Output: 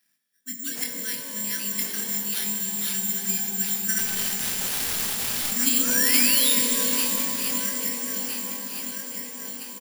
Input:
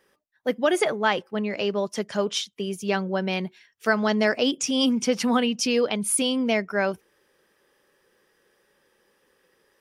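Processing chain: backward echo that repeats 657 ms, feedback 63%, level -0.5 dB; high-pass 130 Hz 24 dB/octave; in parallel at -2 dB: level held to a coarse grid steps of 18 dB; 3.98–5.51 s: on the sum: integer overflow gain 18 dB; 5.30–6.53 s: painted sound rise 590–3900 Hz -18 dBFS; Chebyshev band-stop 270–1600 Hz, order 4; doubling 25 ms -5 dB; band-passed feedback delay 308 ms, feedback 74%, band-pass 380 Hz, level -5 dB; careless resampling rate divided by 6×, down none, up zero stuff; pitch-shifted reverb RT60 3.4 s, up +12 st, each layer -2 dB, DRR 4 dB; trim -13.5 dB

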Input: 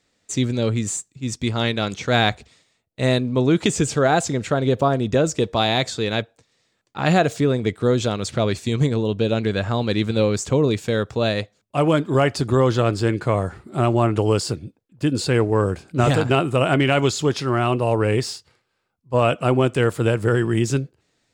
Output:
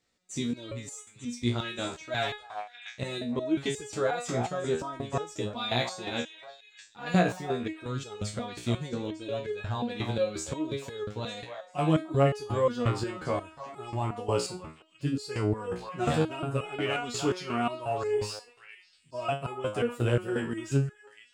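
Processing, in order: repeats whose band climbs or falls 299 ms, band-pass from 920 Hz, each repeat 1.4 oct, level -6 dB; resonator arpeggio 5.6 Hz 60–420 Hz

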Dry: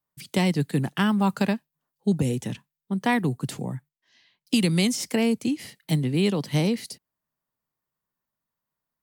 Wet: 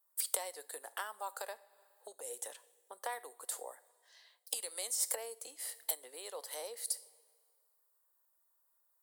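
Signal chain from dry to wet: high-order bell 3.9 kHz -14 dB; two-slope reverb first 0.44 s, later 1.8 s, from -20 dB, DRR 16 dB; compression 6:1, threshold -36 dBFS, peak gain reduction 17.5 dB; elliptic high-pass 510 Hz, stop band 70 dB; resonant high shelf 2.9 kHz +10 dB, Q 1.5; trim +3 dB

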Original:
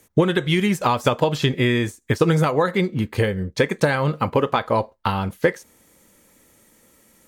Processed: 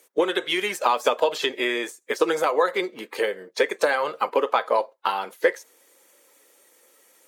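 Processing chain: coarse spectral quantiser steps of 15 dB; high-pass 390 Hz 24 dB/octave

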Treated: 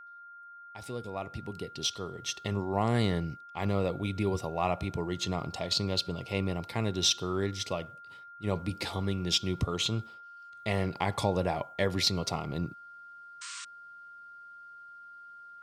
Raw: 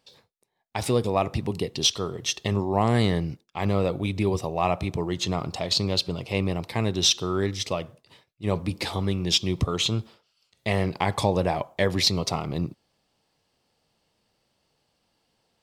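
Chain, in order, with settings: fade-in on the opening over 3.02 s; whistle 1.4 kHz -41 dBFS; painted sound noise, 13.41–13.65 s, 970–9000 Hz -37 dBFS; trim -5.5 dB

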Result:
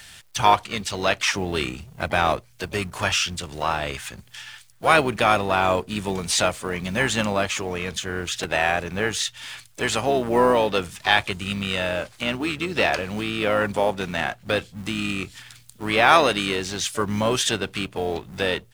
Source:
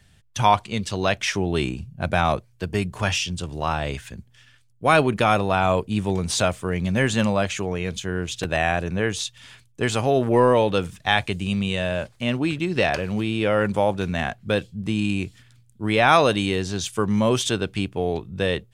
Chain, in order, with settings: companding laws mixed up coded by mu; harmony voices -12 st -12 dB, -4 st -15 dB, +5 st -17 dB; bass shelf 410 Hz -10 dB; tape noise reduction on one side only encoder only; trim +2 dB

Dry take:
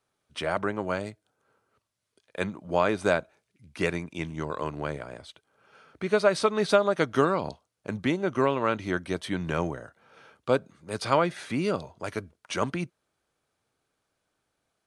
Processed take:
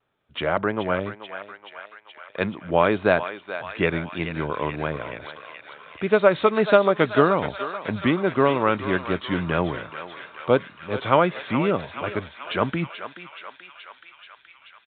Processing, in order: thinning echo 429 ms, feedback 79%, high-pass 860 Hz, level -8.5 dB; vibrato 1.7 Hz 59 cents; resampled via 8 kHz; trim +5 dB

